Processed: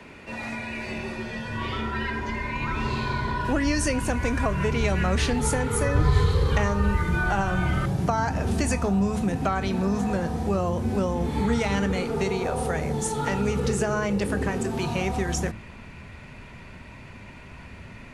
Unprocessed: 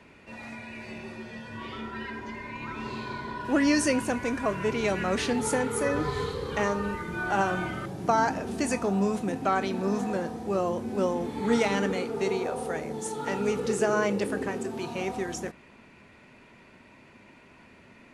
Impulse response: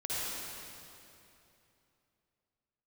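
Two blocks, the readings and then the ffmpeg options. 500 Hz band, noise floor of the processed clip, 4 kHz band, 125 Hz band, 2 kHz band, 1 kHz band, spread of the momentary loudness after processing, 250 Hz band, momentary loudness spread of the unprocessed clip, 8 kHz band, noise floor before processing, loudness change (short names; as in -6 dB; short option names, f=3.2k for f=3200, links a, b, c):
+0.5 dB, -44 dBFS, +3.5 dB, +12.0 dB, +3.0 dB, +1.5 dB, 20 LU, +3.0 dB, 14 LU, +3.5 dB, -54 dBFS, +3.0 dB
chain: -filter_complex "[0:a]bandreject=f=108.4:t=h:w=4,bandreject=f=216.8:t=h:w=4,bandreject=f=325.2:t=h:w=4,asubboost=boost=5.5:cutoff=120,acrossover=split=120[a][b];[b]acompressor=threshold=-32dB:ratio=4[c];[a][c]amix=inputs=2:normalize=0,volume=8.5dB"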